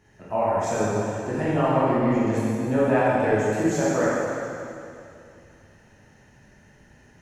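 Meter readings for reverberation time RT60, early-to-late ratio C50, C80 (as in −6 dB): 2.6 s, −4.0 dB, −2.0 dB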